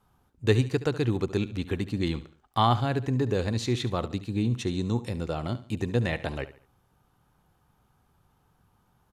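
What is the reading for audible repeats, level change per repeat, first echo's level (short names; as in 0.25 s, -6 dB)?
3, -8.5 dB, -15.5 dB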